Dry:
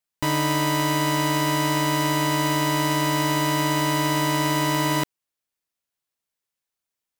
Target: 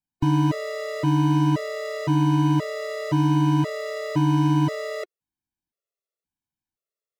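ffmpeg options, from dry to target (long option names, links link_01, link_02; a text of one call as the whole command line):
ffmpeg -i in.wav -filter_complex "[0:a]tiltshelf=frequency=690:gain=8,acrossover=split=7300[link_01][link_02];[link_02]acompressor=threshold=-50dB:ratio=4:attack=1:release=60[link_03];[link_01][link_03]amix=inputs=2:normalize=0,afftfilt=real='re*gt(sin(2*PI*0.96*pts/sr)*(1-2*mod(floor(b*sr/1024/360),2)),0)':imag='im*gt(sin(2*PI*0.96*pts/sr)*(1-2*mod(floor(b*sr/1024/360),2)),0)':win_size=1024:overlap=0.75" out.wav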